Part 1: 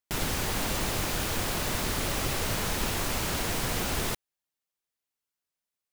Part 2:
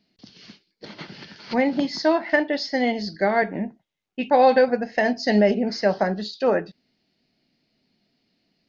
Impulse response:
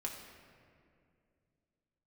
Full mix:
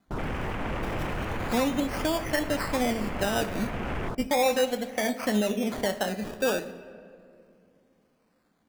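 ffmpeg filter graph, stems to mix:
-filter_complex "[0:a]aemphasis=mode=reproduction:type=50kf,afwtdn=0.0141,alimiter=level_in=1.26:limit=0.0631:level=0:latency=1:release=15,volume=0.794,volume=1.26,asplit=2[s0][s1];[s1]volume=0.1[s2];[1:a]alimiter=limit=0.158:level=0:latency=1:release=466,acrusher=samples=16:mix=1:aa=0.000001:lfo=1:lforange=9.6:lforate=0.35,volume=0.631,asplit=3[s3][s4][s5];[s4]volume=0.631[s6];[s5]apad=whole_len=261278[s7];[s0][s7]sidechaincompress=threshold=0.0316:ratio=8:attack=16:release=780[s8];[2:a]atrim=start_sample=2205[s9];[s2][s6]amix=inputs=2:normalize=0[s10];[s10][s9]afir=irnorm=-1:irlink=0[s11];[s8][s3][s11]amix=inputs=3:normalize=0"

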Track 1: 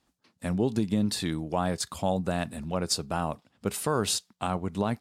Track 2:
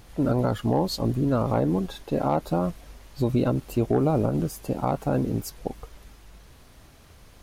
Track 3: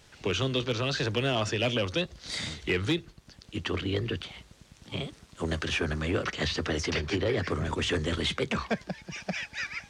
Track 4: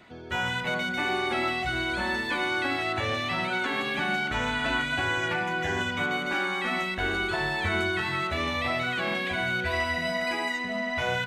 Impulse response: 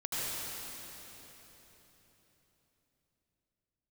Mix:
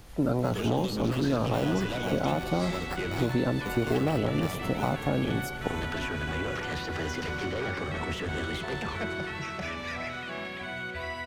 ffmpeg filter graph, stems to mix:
-filter_complex "[0:a]acrusher=samples=14:mix=1:aa=0.000001,volume=0.376[s0];[1:a]volume=0.944,asplit=2[s1][s2];[s2]volume=0.0668[s3];[2:a]asoftclip=type=tanh:threshold=0.0376,adelay=300,volume=0.794,asplit=2[s4][s5];[s5]volume=0.2[s6];[3:a]adelay=1300,volume=0.355,asplit=2[s7][s8];[s8]volume=0.178[s9];[4:a]atrim=start_sample=2205[s10];[s3][s6][s9]amix=inputs=3:normalize=0[s11];[s11][s10]afir=irnorm=-1:irlink=0[s12];[s0][s1][s4][s7][s12]amix=inputs=5:normalize=0,acrossover=split=250|1800[s13][s14][s15];[s13]acompressor=threshold=0.0355:ratio=4[s16];[s14]acompressor=threshold=0.0501:ratio=4[s17];[s15]acompressor=threshold=0.01:ratio=4[s18];[s16][s17][s18]amix=inputs=3:normalize=0"

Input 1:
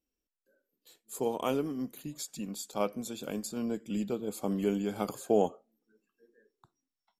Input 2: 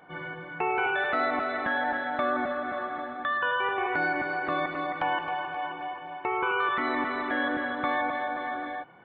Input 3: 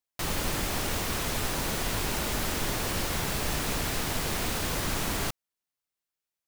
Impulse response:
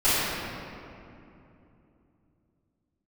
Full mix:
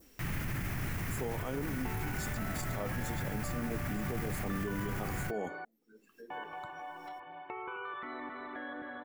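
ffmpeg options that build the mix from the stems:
-filter_complex "[0:a]volume=1.06[s0];[1:a]acompressor=threshold=0.0178:ratio=2,adelay=1250,volume=0.398,asplit=3[s1][s2][s3];[s1]atrim=end=5.65,asetpts=PTS-STARTPTS,afade=t=out:st=5.646:d=0.004:c=hsin[s4];[s2]atrim=start=5.65:end=6.3,asetpts=PTS-STARTPTS,volume=0[s5];[s3]atrim=start=6.3,asetpts=PTS-STARTPTS,afade=t=in:d=0.004:c=hsin[s6];[s4][s5][s6]concat=n=3:v=0:a=1[s7];[2:a]equalizer=f=125:t=o:w=1:g=10,equalizer=f=500:t=o:w=1:g=-9,equalizer=f=1000:t=o:w=1:g=-5,equalizer=f=2000:t=o:w=1:g=7,equalizer=f=4000:t=o:w=1:g=-12,equalizer=f=8000:t=o:w=1:g=-8,equalizer=f=16000:t=o:w=1:g=-3,volume=0.708[s8];[s0][s8]amix=inputs=2:normalize=0,acompressor=mode=upward:threshold=0.0112:ratio=2.5,alimiter=level_in=1.06:limit=0.0631:level=0:latency=1:release=19,volume=0.944,volume=1[s9];[s7][s9]amix=inputs=2:normalize=0,adynamicequalizer=threshold=0.00178:dfrequency=2900:dqfactor=1.2:tfrequency=2900:tqfactor=1.2:attack=5:release=100:ratio=0.375:range=2:mode=cutabove:tftype=bell,alimiter=level_in=1.41:limit=0.0631:level=0:latency=1:release=78,volume=0.708"

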